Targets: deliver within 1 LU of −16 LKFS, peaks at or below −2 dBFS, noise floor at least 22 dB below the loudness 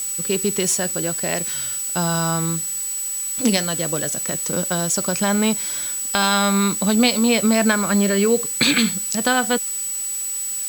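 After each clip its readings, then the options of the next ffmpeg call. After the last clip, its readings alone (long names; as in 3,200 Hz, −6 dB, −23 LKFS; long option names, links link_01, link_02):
interfering tone 7,900 Hz; level of the tone −24 dBFS; background noise floor −26 dBFS; target noise floor −42 dBFS; integrated loudness −19.5 LKFS; sample peak −3.5 dBFS; target loudness −16.0 LKFS
→ -af "bandreject=frequency=7900:width=30"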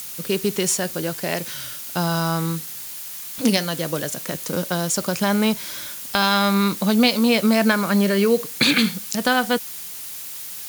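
interfering tone none found; background noise floor −34 dBFS; target noise floor −43 dBFS
→ -af "afftdn=noise_reduction=9:noise_floor=-34"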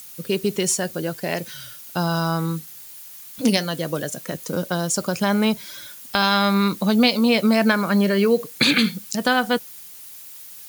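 background noise floor −41 dBFS; target noise floor −43 dBFS
→ -af "afftdn=noise_reduction=6:noise_floor=-41"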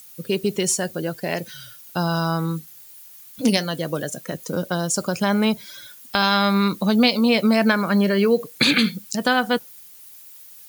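background noise floor −45 dBFS; integrated loudness −21.0 LKFS; sample peak −4.0 dBFS; target loudness −16.0 LKFS
→ -af "volume=5dB,alimiter=limit=-2dB:level=0:latency=1"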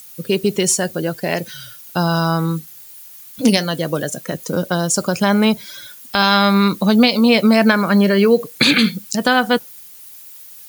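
integrated loudness −16.5 LKFS; sample peak −2.0 dBFS; background noise floor −40 dBFS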